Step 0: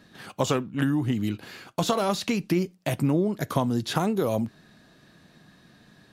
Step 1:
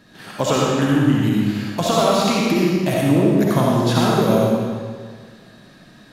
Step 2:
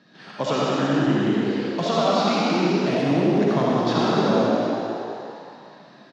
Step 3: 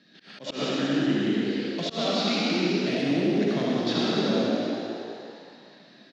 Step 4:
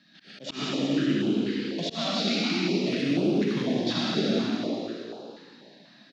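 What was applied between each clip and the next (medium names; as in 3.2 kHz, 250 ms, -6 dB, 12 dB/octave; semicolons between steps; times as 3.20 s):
algorithmic reverb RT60 1.8 s, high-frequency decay 0.9×, pre-delay 25 ms, DRR -5 dB; trim +3 dB
Chebyshev band-pass 150–5300 Hz, order 3; frequency-shifting echo 188 ms, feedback 59%, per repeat +60 Hz, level -4.5 dB; trim -4.5 dB
graphic EQ 125/250/1000/2000/4000 Hz -5/+3/-10/+4/+6 dB; slow attack 122 ms; trim -4.5 dB
rattle on loud lows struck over -26 dBFS, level -33 dBFS; step-sequenced notch 4.1 Hz 430–1900 Hz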